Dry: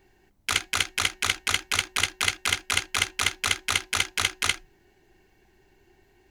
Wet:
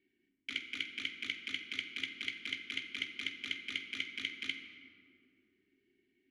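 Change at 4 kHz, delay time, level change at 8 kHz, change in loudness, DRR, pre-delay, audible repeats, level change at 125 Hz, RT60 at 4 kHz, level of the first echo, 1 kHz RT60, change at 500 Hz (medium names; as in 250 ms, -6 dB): -13.0 dB, no echo, -29.5 dB, -14.0 dB, 6.0 dB, 3 ms, no echo, -25.0 dB, 1.2 s, no echo, 2.2 s, -20.0 dB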